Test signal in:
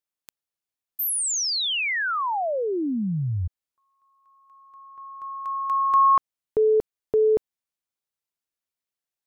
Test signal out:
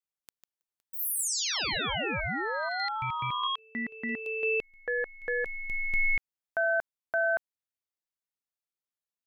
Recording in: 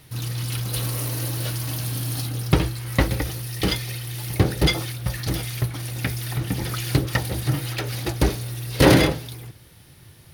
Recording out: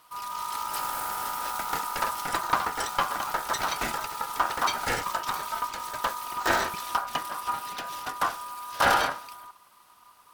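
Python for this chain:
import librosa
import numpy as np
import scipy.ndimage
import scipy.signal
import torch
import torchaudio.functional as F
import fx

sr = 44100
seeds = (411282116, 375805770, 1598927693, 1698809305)

y = fx.echo_pitch(x, sr, ms=233, semitones=6, count=3, db_per_echo=-3.0)
y = y * np.sin(2.0 * np.pi * 1100.0 * np.arange(len(y)) / sr)
y = F.gain(torch.from_numpy(y), -5.0).numpy()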